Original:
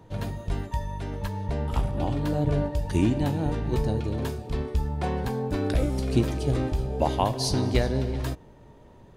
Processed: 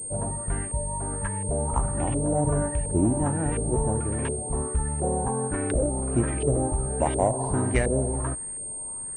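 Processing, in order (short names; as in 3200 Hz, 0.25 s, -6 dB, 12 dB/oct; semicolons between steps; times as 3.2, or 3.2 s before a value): 5.47–6.18 AM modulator 300 Hz, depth 25%; LFO low-pass saw up 1.4 Hz 480–2500 Hz; in parallel at -8 dB: soft clip -18.5 dBFS, distortion -14 dB; on the sum: pulse-width modulation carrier 8600 Hz; gain -3 dB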